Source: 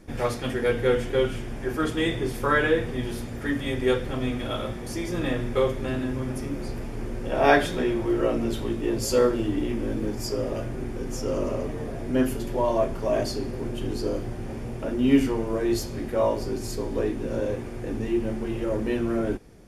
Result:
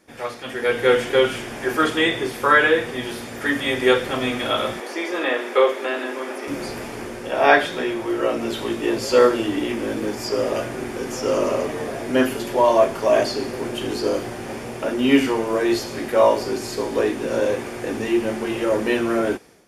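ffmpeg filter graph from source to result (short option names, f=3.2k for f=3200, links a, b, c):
-filter_complex "[0:a]asettb=1/sr,asplit=3[a][b][c];[a]atrim=end=4.804[d];[b]atrim=start=4.8:end=6.48,asetpts=PTS-STARTPTS,afade=t=in:d=0.004:c=qsin,afade=t=out:st=1.676:d=0.004:c=qsin,acrossover=split=3400[e][f];[f]acompressor=threshold=-57dB:ratio=4:attack=1:release=60[g];[e][g]amix=inputs=2:normalize=0,highpass=f=320:w=0.5412,highpass=f=320:w=1.3066[h];[c]atrim=start=6.476[i];[d][h]acrossfade=d=0.004:c1=hsin:c2=qsin[j];[j][i]acrossfade=d=0.004:c1=qsin:c2=hsin,acrossover=split=4000[k][l];[l]acompressor=threshold=-47dB:ratio=4:attack=1:release=60[m];[k][m]amix=inputs=2:normalize=0,highpass=f=720:p=1,dynaudnorm=f=460:g=3:m=12.5dB"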